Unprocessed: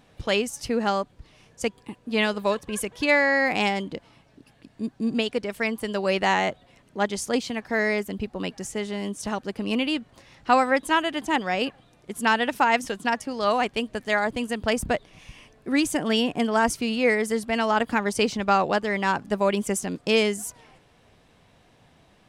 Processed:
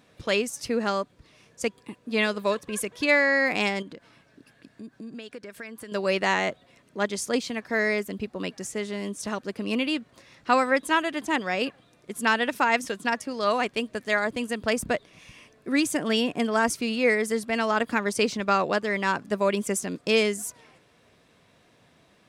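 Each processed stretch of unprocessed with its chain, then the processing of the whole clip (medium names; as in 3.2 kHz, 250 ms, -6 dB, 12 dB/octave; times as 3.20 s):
3.82–5.92 s: peaking EQ 1.6 kHz +8 dB 0.27 oct + compression 4:1, threshold -37 dBFS
whole clip: high-pass 170 Hz 6 dB/octave; peaking EQ 810 Hz -7 dB 0.31 oct; band-stop 3 kHz, Q 19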